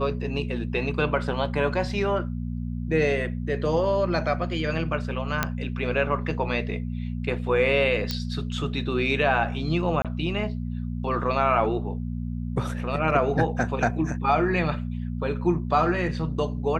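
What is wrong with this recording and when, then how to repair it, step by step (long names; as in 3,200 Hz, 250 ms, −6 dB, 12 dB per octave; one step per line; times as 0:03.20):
mains hum 60 Hz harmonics 4 −30 dBFS
0:05.43: click −7 dBFS
0:08.11: click −12 dBFS
0:10.02–0:10.05: drop-out 27 ms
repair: click removal
hum removal 60 Hz, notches 4
repair the gap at 0:10.02, 27 ms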